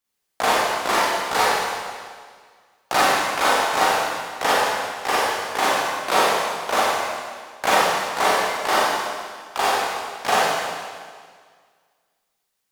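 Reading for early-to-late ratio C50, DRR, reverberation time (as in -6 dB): -3.5 dB, -8.5 dB, 1.8 s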